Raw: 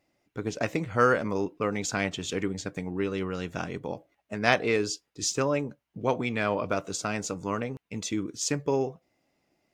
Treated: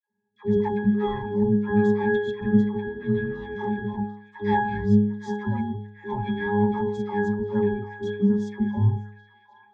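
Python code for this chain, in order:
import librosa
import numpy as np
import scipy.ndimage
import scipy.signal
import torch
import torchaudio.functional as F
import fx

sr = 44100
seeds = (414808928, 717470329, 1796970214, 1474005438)

p1 = fx.band_invert(x, sr, width_hz=500)
p2 = p1 + 0.9 * np.pad(p1, (int(5.6 * sr / 1000.0), 0))[:len(p1)]
p3 = fx.leveller(p2, sr, passes=2)
p4 = fx.rider(p3, sr, range_db=4, speed_s=0.5)
p5 = p3 + (p4 * librosa.db_to_amplitude(1.0))
p6 = fx.octave_resonator(p5, sr, note='G#', decay_s=0.61)
p7 = fx.dispersion(p6, sr, late='lows', ms=93.0, hz=760.0)
p8 = p7 + fx.echo_stepped(p7, sr, ms=748, hz=1200.0, octaves=0.7, feedback_pct=70, wet_db=-11.0, dry=0)
y = p8 * librosa.db_to_amplitude(7.0)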